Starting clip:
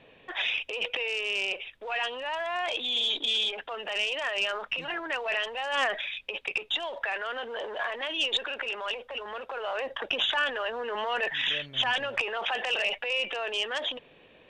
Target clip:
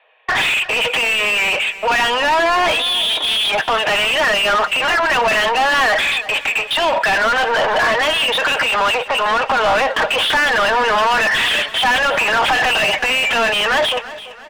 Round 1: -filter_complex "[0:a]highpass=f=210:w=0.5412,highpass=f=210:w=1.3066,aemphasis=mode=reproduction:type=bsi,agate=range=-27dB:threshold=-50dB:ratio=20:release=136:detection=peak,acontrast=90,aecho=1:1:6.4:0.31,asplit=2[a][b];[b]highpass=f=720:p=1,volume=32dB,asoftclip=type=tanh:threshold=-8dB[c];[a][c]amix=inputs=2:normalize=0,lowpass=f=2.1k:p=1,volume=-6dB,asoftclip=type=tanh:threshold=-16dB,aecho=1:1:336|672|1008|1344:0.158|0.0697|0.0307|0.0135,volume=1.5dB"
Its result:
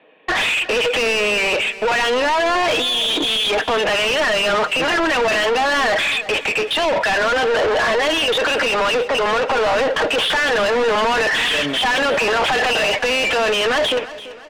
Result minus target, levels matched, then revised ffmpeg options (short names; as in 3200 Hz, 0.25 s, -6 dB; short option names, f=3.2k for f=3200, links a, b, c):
soft clip: distortion +16 dB; 250 Hz band +6.0 dB
-filter_complex "[0:a]highpass=f=660:w=0.5412,highpass=f=660:w=1.3066,aemphasis=mode=reproduction:type=bsi,agate=range=-27dB:threshold=-50dB:ratio=20:release=136:detection=peak,acontrast=90,aecho=1:1:6.4:0.31,asplit=2[a][b];[b]highpass=f=720:p=1,volume=32dB,asoftclip=type=tanh:threshold=-8dB[c];[a][c]amix=inputs=2:normalize=0,lowpass=f=2.1k:p=1,volume=-6dB,asoftclip=type=tanh:threshold=-6.5dB,aecho=1:1:336|672|1008|1344:0.158|0.0697|0.0307|0.0135,volume=1.5dB"